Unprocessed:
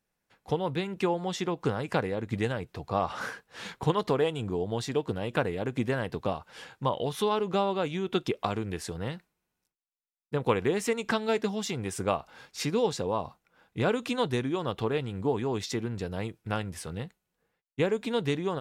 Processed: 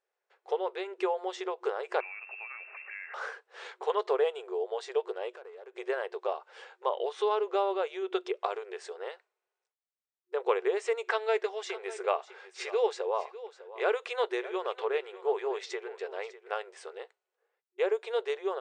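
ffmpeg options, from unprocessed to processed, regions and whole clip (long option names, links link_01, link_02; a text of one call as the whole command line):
ffmpeg -i in.wav -filter_complex "[0:a]asettb=1/sr,asplit=3[link_01][link_02][link_03];[link_01]atrim=end=2.004[link_04];[link_02]atrim=start=2:end=3.14,asetpts=PTS-STARTPTS,afade=type=in:duration=0.004:curve=qsin,afade=type=out:start_time=1.136:duration=0.004:curve=qsin,aeval=exprs='val(0)+0.5*0.0119*sgn(val(0))':channel_layout=same,lowpass=frequency=2400:width_type=q:width=0.5098,lowpass=frequency=2400:width_type=q:width=0.6013,lowpass=frequency=2400:width_type=q:width=0.9,lowpass=frequency=2400:width_type=q:width=2.563,afreqshift=-2800,acompressor=threshold=-38dB:ratio=3:attack=3.2:release=140:knee=1:detection=peak[link_05];[link_03]atrim=start=3.136[link_06];[link_04][link_05]acrossfade=duration=0.004:curve1=hsin:curve2=qsin[link_07];[link_07][link_06]acrossfade=duration=0.004:curve1=qsin:curve2=hsin,asettb=1/sr,asplit=3[link_08][link_09][link_10];[link_08]atrim=end=5.314[link_11];[link_09]atrim=start=5.31:end=5.78,asetpts=PTS-STARTPTS,afade=type=in:duration=0.004:curve=qsin,afade=type=out:start_time=0.466:duration=0.004:curve=qsin,acompressor=threshold=-42dB:ratio=4:attack=3.2:release=140:knee=1:detection=peak,asoftclip=type=hard:threshold=-39dB[link_12];[link_10]atrim=start=5.776[link_13];[link_11][link_12]acrossfade=duration=0.004:curve1=hsin:curve2=qsin[link_14];[link_14][link_13]acrossfade=duration=0.004:curve1=qsin:curve2=hsin,asettb=1/sr,asplit=3[link_15][link_16][link_17];[link_15]atrim=end=11.044[link_18];[link_16]atrim=start=11.04:end=16.51,asetpts=PTS-STARTPTS,afade=type=in:duration=0.004:curve=qsin,afade=type=out:start_time=5.466:duration=0.004:curve=qsin,equalizer=frequency=2100:width=1.5:gain=4.5,aecho=1:1:601:0.158,atrim=end_sample=241227[link_19];[link_17]atrim=start=16.506[link_20];[link_18][link_19]acrossfade=duration=0.004:curve1=hsin:curve2=qsin[link_21];[link_21][link_20]acrossfade=duration=0.004:curve1=qsin:curve2=hsin,bandreject=frequency=960:width=27,afftfilt=real='re*between(b*sr/4096,360,9200)':imag='im*between(b*sr/4096,360,9200)':win_size=4096:overlap=0.75,highshelf=frequency=3300:gain=-12" out.wav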